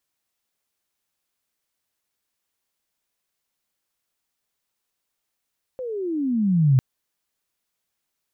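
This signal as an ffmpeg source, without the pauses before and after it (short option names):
-f lavfi -i "aevalsrc='pow(10,(-12+16*(t/1-1))/20)*sin(2*PI*527*1/(-25*log(2)/12)*(exp(-25*log(2)/12*t/1)-1))':d=1:s=44100"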